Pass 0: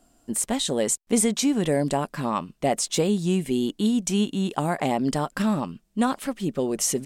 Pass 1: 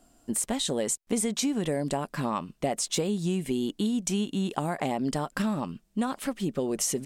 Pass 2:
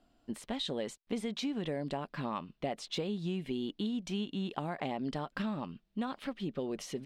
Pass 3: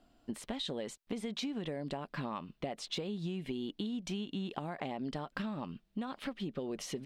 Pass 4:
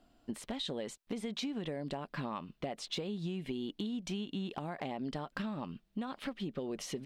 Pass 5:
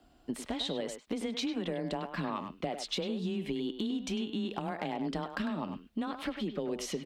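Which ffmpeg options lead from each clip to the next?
ffmpeg -i in.wav -af "acompressor=threshold=-25dB:ratio=4" out.wav
ffmpeg -i in.wav -af "highshelf=frequency=5500:width_type=q:width=1.5:gain=-13.5,volume=-7.5dB" out.wav
ffmpeg -i in.wav -af "acompressor=threshold=-37dB:ratio=6,volume=2.5dB" out.wav
ffmpeg -i in.wav -af "volume=27dB,asoftclip=hard,volume=-27dB" out.wav
ffmpeg -i in.wav -filter_complex "[0:a]afreqshift=18,asplit=2[link_01][link_02];[link_02]adelay=100,highpass=300,lowpass=3400,asoftclip=type=hard:threshold=-31dB,volume=-7dB[link_03];[link_01][link_03]amix=inputs=2:normalize=0,volume=3.5dB" out.wav

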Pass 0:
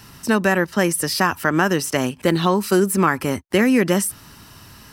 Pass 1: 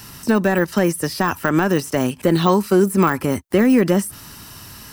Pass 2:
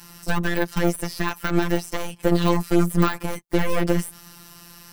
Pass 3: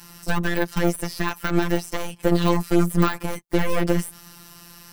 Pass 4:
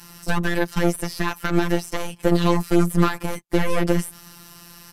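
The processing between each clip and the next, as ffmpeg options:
ffmpeg -i in.wav -af "deesser=0.8,highshelf=frequency=5800:gain=7.5,volume=3dB" out.wav
ffmpeg -i in.wav -af "aeval=exprs='0.891*(cos(1*acos(clip(val(0)/0.891,-1,1)))-cos(1*PI/2))+0.141*(cos(8*acos(clip(val(0)/0.891,-1,1)))-cos(8*PI/2))':channel_layout=same,afftfilt=real='hypot(re,im)*cos(PI*b)':imag='0':win_size=1024:overlap=0.75,volume=-3dB" out.wav
ffmpeg -i in.wav -af anull out.wav
ffmpeg -i in.wav -af "aresample=32000,aresample=44100,volume=1dB" out.wav

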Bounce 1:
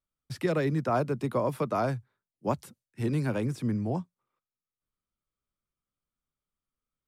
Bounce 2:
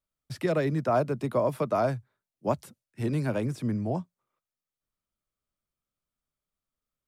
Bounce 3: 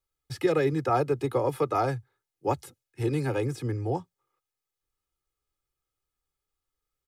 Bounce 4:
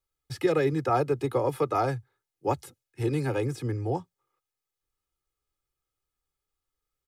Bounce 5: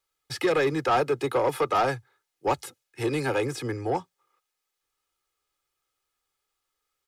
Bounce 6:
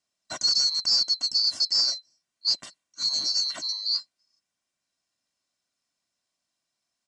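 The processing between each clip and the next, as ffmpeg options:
ffmpeg -i in.wav -af "equalizer=frequency=630:width_type=o:width=0.26:gain=6" out.wav
ffmpeg -i in.wav -af "aecho=1:1:2.4:0.92" out.wav
ffmpeg -i in.wav -af anull out.wav
ffmpeg -i in.wav -filter_complex "[0:a]asplit=2[link_01][link_02];[link_02]highpass=frequency=720:poles=1,volume=17dB,asoftclip=type=tanh:threshold=-11.5dB[link_03];[link_01][link_03]amix=inputs=2:normalize=0,lowpass=frequency=7800:poles=1,volume=-6dB,volume=-2.5dB" out.wav
ffmpeg -i in.wav -af "afftfilt=real='real(if(lt(b,736),b+184*(1-2*mod(floor(b/184),2)),b),0)':imag='imag(if(lt(b,736),b+184*(1-2*mod(floor(b/184),2)),b),0)':win_size=2048:overlap=0.75,aresample=22050,aresample=44100" out.wav

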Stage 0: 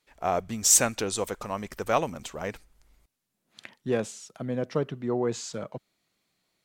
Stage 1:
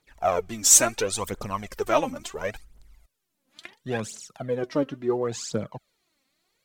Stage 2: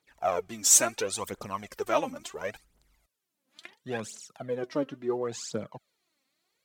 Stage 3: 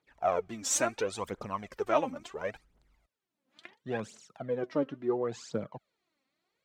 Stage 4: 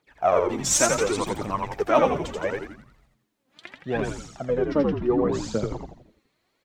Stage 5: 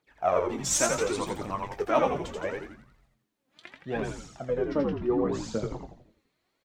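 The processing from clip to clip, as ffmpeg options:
ffmpeg -i in.wav -af "aphaser=in_gain=1:out_gain=1:delay=3.9:decay=0.68:speed=0.72:type=triangular" out.wav
ffmpeg -i in.wav -af "highpass=frequency=160:poles=1,volume=-4dB" out.wav
ffmpeg -i in.wav -af "aemphasis=mode=reproduction:type=75kf" out.wav
ffmpeg -i in.wav -filter_complex "[0:a]asplit=7[link_01][link_02][link_03][link_04][link_05][link_06][link_07];[link_02]adelay=84,afreqshift=-89,volume=-3dB[link_08];[link_03]adelay=168,afreqshift=-178,volume=-9.6dB[link_09];[link_04]adelay=252,afreqshift=-267,volume=-16.1dB[link_10];[link_05]adelay=336,afreqshift=-356,volume=-22.7dB[link_11];[link_06]adelay=420,afreqshift=-445,volume=-29.2dB[link_12];[link_07]adelay=504,afreqshift=-534,volume=-35.8dB[link_13];[link_01][link_08][link_09][link_10][link_11][link_12][link_13]amix=inputs=7:normalize=0,volume=7dB" out.wav
ffmpeg -i in.wav -filter_complex "[0:a]asplit=2[link_01][link_02];[link_02]adelay=22,volume=-10.5dB[link_03];[link_01][link_03]amix=inputs=2:normalize=0,volume=-5dB" out.wav

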